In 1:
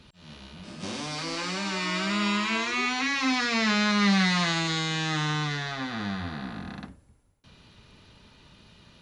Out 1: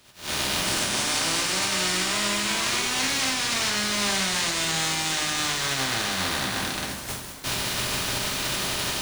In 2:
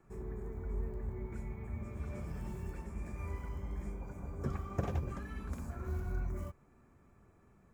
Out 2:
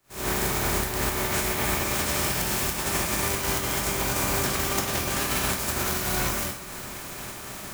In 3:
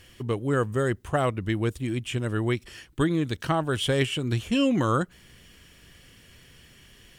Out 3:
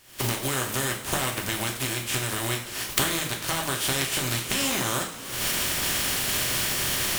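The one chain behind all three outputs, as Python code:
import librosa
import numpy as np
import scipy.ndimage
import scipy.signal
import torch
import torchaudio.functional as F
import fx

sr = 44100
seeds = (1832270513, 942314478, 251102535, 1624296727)

y = fx.spec_flatten(x, sr, power=0.32)
y = fx.recorder_agc(y, sr, target_db=-12.0, rise_db_per_s=72.0, max_gain_db=30)
y = fx.rev_double_slope(y, sr, seeds[0], early_s=0.45, late_s=4.2, knee_db=-18, drr_db=0.5)
y = F.gain(torch.from_numpy(y), -6.5).numpy()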